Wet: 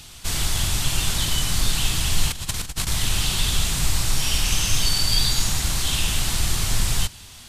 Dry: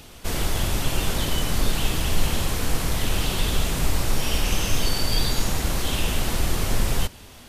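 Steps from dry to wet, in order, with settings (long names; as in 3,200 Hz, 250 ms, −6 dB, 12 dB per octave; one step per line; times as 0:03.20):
octave-band graphic EQ 125/250/500/4,000/8,000 Hz +3/−5/−9/+5/+7 dB
0:02.28–0:02.87: compressor whose output falls as the input rises −26 dBFS, ratio −0.5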